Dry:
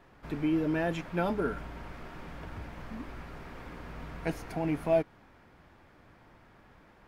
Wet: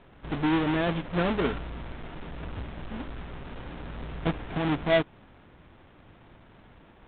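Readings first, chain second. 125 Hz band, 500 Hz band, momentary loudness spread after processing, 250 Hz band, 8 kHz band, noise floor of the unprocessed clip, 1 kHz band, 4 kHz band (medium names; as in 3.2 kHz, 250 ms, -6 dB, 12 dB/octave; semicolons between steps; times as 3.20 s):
+5.0 dB, +2.5 dB, 16 LU, +3.5 dB, under -20 dB, -59 dBFS, +4.5 dB, +11.5 dB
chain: square wave that keeps the level; G.726 32 kbps 8 kHz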